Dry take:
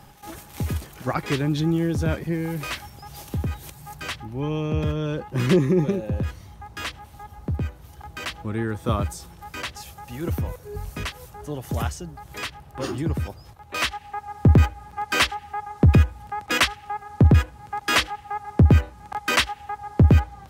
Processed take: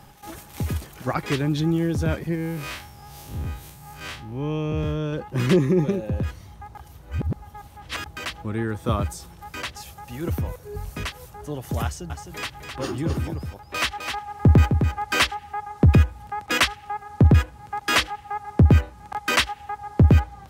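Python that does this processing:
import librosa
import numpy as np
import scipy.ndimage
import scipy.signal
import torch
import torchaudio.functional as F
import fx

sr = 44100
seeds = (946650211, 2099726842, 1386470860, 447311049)

y = fx.spec_blur(x, sr, span_ms=94.0, at=(2.35, 5.13))
y = fx.echo_single(y, sr, ms=259, db=-6.5, at=(11.84, 15.18))
y = fx.edit(y, sr, fx.reverse_span(start_s=6.75, length_s=1.31), tone=tone)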